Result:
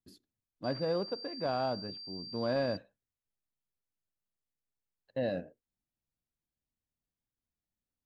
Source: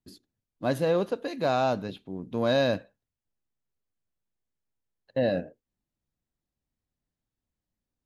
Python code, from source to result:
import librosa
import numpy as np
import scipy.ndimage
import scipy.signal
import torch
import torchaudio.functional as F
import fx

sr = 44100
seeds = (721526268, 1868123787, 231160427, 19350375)

y = fx.pwm(x, sr, carrier_hz=4700.0, at=(0.64, 2.77))
y = F.gain(torch.from_numpy(y), -7.5).numpy()